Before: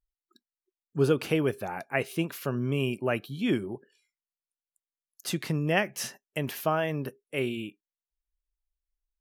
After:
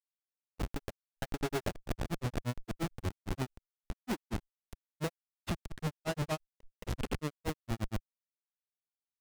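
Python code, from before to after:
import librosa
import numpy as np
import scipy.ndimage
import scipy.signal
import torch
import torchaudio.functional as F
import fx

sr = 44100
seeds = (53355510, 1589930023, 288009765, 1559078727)

y = fx.schmitt(x, sr, flips_db=-31.5)
y = fx.granulator(y, sr, seeds[0], grain_ms=99.0, per_s=8.6, spray_ms=817.0, spread_st=0)
y = F.gain(torch.from_numpy(y), 2.0).numpy()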